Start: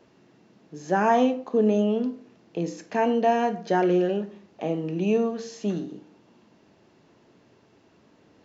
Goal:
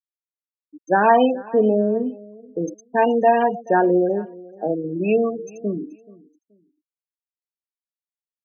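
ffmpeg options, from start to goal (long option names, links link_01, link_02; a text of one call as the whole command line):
ffmpeg -i in.wav -af "aemphasis=mode=production:type=bsi,afftfilt=real='re*gte(hypot(re,im),0.0708)':imag='im*gte(hypot(re,im),0.0708)':win_size=1024:overlap=0.75,aecho=1:1:429|858:0.0794|0.0191,volume=7dB" out.wav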